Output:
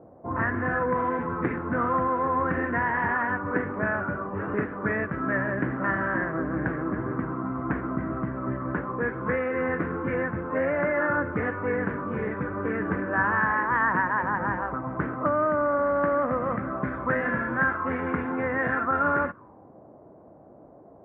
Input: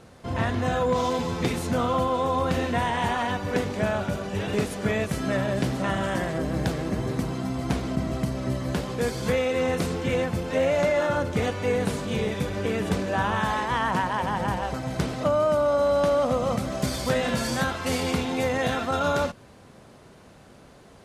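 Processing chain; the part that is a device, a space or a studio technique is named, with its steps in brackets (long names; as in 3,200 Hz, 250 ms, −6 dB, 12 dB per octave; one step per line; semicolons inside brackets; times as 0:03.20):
envelope filter bass rig (envelope-controlled low-pass 660–1,700 Hz up, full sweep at −22 dBFS; loudspeaker in its box 70–2,200 Hz, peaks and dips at 310 Hz +9 dB, 730 Hz −4 dB, 1,100 Hz +4 dB)
level −4.5 dB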